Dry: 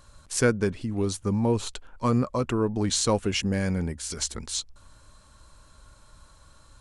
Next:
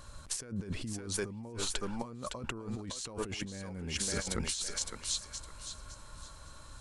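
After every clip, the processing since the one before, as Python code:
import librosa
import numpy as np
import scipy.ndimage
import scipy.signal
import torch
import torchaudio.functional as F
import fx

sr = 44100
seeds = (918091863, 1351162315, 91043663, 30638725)

y = fx.echo_thinned(x, sr, ms=561, feedback_pct=31, hz=670.0, wet_db=-6.5)
y = fx.over_compress(y, sr, threshold_db=-35.0, ratio=-1.0)
y = y * librosa.db_to_amplitude(-4.0)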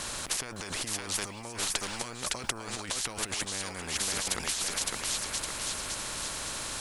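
y = fx.spectral_comp(x, sr, ratio=4.0)
y = y * librosa.db_to_amplitude(7.0)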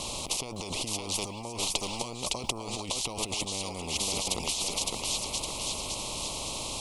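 y = scipy.signal.sosfilt(scipy.signal.cheby1(2, 1.0, [970.0, 2700.0], 'bandstop', fs=sr, output='sos'), x)
y = fx.high_shelf(y, sr, hz=6300.0, db=-6.5)
y = y * librosa.db_to_amplitude(4.5)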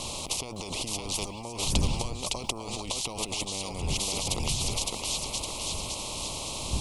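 y = fx.dmg_wind(x, sr, seeds[0], corner_hz=100.0, level_db=-36.0)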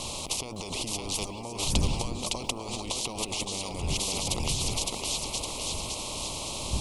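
y = fx.echo_stepped(x, sr, ms=326, hz=290.0, octaves=0.7, feedback_pct=70, wet_db=-5.5)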